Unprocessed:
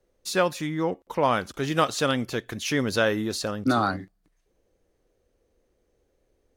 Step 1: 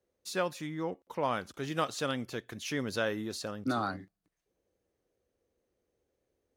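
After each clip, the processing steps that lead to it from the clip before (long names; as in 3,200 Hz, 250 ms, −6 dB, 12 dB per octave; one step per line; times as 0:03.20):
high-pass filter 70 Hz
level −9 dB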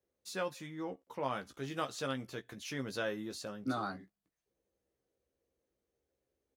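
double-tracking delay 15 ms −6 dB
level −6 dB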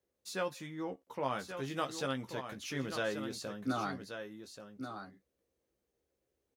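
single-tap delay 1,132 ms −8.5 dB
level +1 dB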